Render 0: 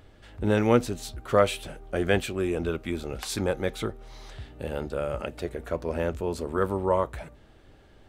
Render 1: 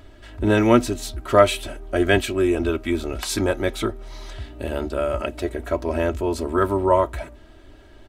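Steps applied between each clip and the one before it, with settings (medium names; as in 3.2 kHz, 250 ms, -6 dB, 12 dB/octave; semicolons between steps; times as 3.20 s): comb 3.1 ms, depth 69%; trim +5 dB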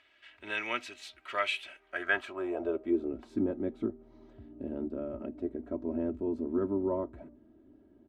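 band-pass sweep 2.4 kHz -> 250 Hz, 1.77–3.21 s; trim -2.5 dB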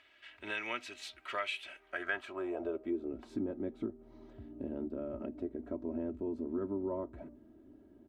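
compression 2:1, threshold -39 dBFS, peak gain reduction 9 dB; trim +1 dB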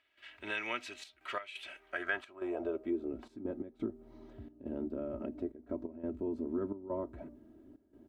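trance gate ".xxxxx.x.xxxx" 87 bpm -12 dB; trim +1 dB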